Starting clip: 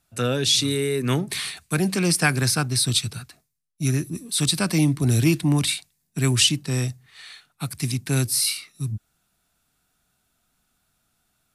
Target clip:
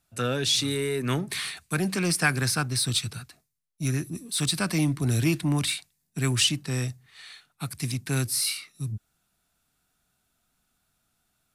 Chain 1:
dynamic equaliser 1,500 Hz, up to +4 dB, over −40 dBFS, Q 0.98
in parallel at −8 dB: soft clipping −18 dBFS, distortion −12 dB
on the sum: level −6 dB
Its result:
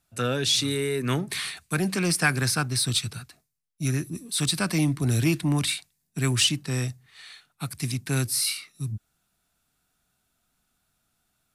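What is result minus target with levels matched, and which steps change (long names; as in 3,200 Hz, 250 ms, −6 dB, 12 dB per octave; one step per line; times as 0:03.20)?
soft clipping: distortion −6 dB
change: soft clipping −26.5 dBFS, distortion −6 dB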